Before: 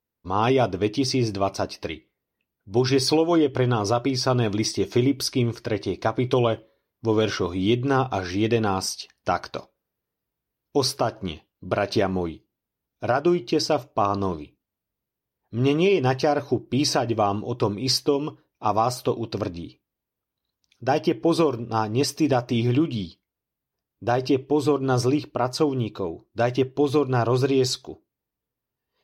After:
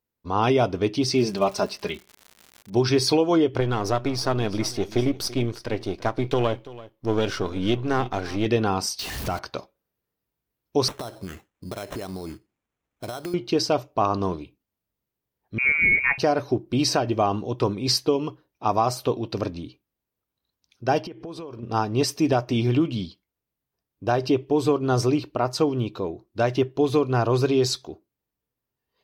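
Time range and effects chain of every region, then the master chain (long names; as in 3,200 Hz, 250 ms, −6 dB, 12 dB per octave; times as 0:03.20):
0:01.13–0:02.74: comb filter 4.9 ms, depth 79% + surface crackle 190 per second −34 dBFS
0:03.60–0:08.46: gain on one half-wave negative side −7 dB + single-tap delay 335 ms −18 dB
0:08.99–0:09.39: converter with a step at zero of −28 dBFS + low-shelf EQ 150 Hz +9.5 dB + downward compressor 2 to 1, threshold −28 dBFS
0:10.88–0:13.34: downward compressor 8 to 1, threshold −29 dBFS + sample-rate reduction 4,700 Hz
0:15.58–0:16.18: high-pass filter 160 Hz + voice inversion scrambler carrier 2,600 Hz
0:21.02–0:21.63: high-shelf EQ 7,900 Hz −7 dB + downward compressor 10 to 1, threshold −33 dBFS
whole clip: no processing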